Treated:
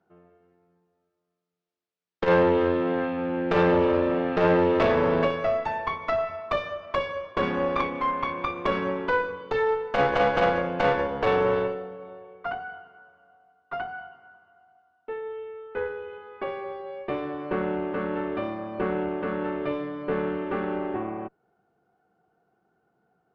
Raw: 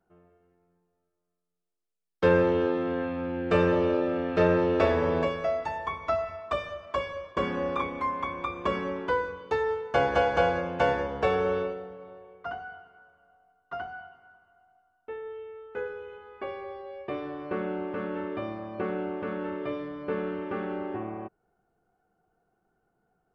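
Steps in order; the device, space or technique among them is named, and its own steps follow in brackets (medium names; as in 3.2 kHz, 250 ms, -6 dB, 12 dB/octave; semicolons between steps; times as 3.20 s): valve radio (band-pass 110–4300 Hz; valve stage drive 20 dB, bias 0.65; transformer saturation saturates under 230 Hz); trim +7.5 dB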